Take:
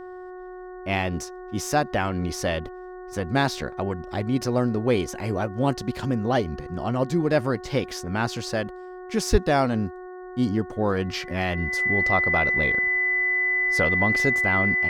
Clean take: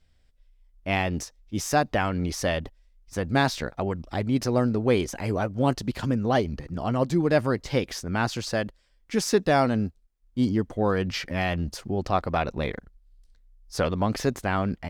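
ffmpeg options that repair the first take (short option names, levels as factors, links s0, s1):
-filter_complex "[0:a]bandreject=f=366.1:t=h:w=4,bandreject=f=732.2:t=h:w=4,bandreject=f=1098.3:t=h:w=4,bandreject=f=1464.4:t=h:w=4,bandreject=f=1830.5:t=h:w=4,bandreject=f=2000:w=30,asplit=3[s0][s1][s2];[s0]afade=t=out:st=9.31:d=0.02[s3];[s1]highpass=f=140:w=0.5412,highpass=f=140:w=1.3066,afade=t=in:st=9.31:d=0.02,afade=t=out:st=9.43:d=0.02[s4];[s2]afade=t=in:st=9.43:d=0.02[s5];[s3][s4][s5]amix=inputs=3:normalize=0"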